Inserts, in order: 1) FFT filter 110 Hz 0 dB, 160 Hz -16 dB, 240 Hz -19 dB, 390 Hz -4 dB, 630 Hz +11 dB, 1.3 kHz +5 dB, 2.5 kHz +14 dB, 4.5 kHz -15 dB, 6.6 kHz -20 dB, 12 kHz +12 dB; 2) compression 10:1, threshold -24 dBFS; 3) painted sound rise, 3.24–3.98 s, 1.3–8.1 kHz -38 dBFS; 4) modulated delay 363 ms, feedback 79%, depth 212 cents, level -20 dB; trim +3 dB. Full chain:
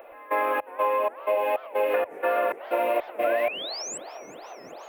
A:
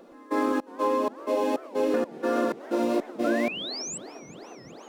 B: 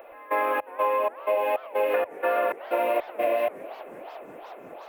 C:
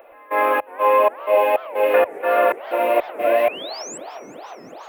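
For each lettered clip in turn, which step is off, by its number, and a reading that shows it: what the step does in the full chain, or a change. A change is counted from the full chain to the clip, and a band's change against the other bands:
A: 1, loudness change -1.0 LU; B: 3, 4 kHz band -9.0 dB; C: 2, mean gain reduction 4.0 dB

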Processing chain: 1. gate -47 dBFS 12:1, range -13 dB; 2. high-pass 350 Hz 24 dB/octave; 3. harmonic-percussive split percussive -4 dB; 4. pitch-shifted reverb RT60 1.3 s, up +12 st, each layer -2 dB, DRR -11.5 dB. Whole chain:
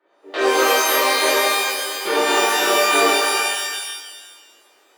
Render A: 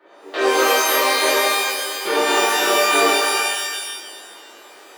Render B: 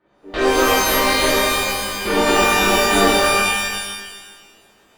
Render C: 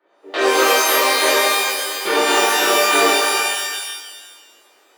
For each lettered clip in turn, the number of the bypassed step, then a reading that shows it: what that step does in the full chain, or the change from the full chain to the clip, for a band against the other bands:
1, momentary loudness spread change +2 LU; 2, 250 Hz band +6.0 dB; 3, loudness change +1.5 LU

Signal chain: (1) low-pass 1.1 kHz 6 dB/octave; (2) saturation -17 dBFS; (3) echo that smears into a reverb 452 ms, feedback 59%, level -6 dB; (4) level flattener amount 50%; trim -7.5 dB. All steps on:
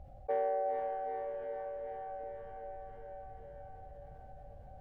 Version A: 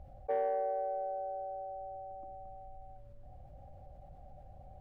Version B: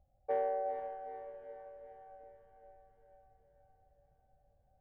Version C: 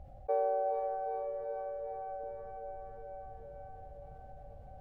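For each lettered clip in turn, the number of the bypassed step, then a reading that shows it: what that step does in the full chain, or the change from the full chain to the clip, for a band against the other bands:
3, momentary loudness spread change +3 LU; 4, crest factor change +3.0 dB; 2, distortion -20 dB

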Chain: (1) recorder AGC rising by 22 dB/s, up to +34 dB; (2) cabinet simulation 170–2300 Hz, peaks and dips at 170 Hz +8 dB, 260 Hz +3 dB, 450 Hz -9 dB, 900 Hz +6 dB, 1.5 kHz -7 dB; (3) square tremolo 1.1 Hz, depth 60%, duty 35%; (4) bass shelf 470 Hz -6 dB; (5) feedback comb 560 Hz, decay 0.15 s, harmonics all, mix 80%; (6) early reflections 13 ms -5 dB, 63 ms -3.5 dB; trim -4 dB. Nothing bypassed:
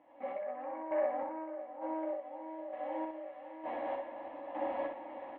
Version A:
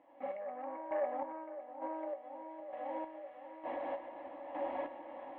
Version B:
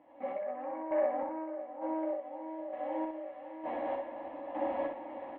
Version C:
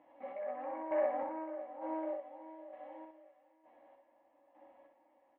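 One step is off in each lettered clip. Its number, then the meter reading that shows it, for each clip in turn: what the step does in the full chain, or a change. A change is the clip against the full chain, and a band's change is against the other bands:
6, echo-to-direct -1.0 dB to none; 4, 250 Hz band +2.5 dB; 1, crest factor change +3.0 dB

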